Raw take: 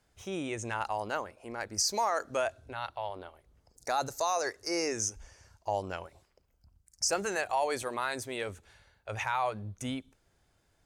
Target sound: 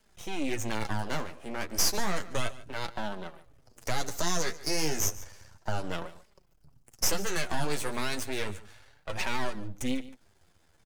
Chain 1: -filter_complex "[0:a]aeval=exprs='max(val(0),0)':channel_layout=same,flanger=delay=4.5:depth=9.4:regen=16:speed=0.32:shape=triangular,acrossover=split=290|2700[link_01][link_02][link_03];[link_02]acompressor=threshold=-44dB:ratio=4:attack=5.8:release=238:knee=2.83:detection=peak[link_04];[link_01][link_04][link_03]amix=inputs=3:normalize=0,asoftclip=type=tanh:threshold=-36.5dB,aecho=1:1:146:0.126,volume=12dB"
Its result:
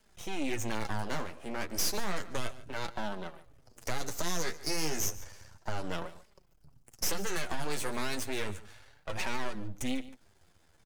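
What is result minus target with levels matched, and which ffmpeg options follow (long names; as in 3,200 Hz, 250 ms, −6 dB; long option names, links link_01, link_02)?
soft clipping: distortion +16 dB
-filter_complex "[0:a]aeval=exprs='max(val(0),0)':channel_layout=same,flanger=delay=4.5:depth=9.4:regen=16:speed=0.32:shape=triangular,acrossover=split=290|2700[link_01][link_02][link_03];[link_02]acompressor=threshold=-44dB:ratio=4:attack=5.8:release=238:knee=2.83:detection=peak[link_04];[link_01][link_04][link_03]amix=inputs=3:normalize=0,asoftclip=type=tanh:threshold=-25dB,aecho=1:1:146:0.126,volume=12dB"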